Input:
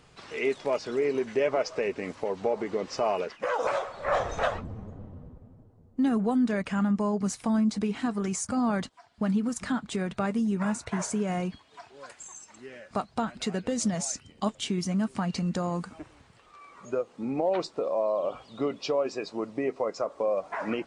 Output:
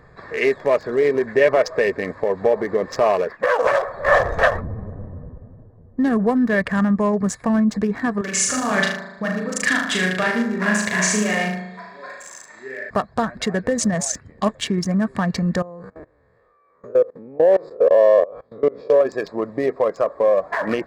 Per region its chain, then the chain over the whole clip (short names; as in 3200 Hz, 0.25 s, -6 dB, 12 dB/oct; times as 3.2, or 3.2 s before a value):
8.21–12.9 weighting filter D + flange 1.3 Hz, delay 2.8 ms, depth 4.8 ms, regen +32% + flutter echo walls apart 6.5 m, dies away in 0.93 s
15.62–19.01 time blur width 83 ms + bell 480 Hz +11 dB 0.55 oct + level quantiser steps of 23 dB
whole clip: Wiener smoothing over 15 samples; bell 1800 Hz +12.5 dB 0.23 oct; comb 1.8 ms, depth 31%; gain +9 dB